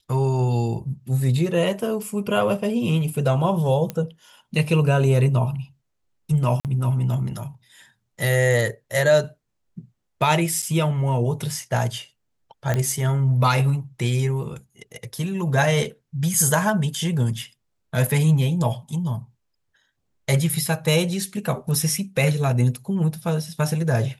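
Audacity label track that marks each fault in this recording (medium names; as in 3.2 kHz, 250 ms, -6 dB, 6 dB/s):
3.900000	3.900000	pop -13 dBFS
6.600000	6.650000	dropout 48 ms
10.620000	10.630000	dropout 6.2 ms
12.740000	12.740000	pop -10 dBFS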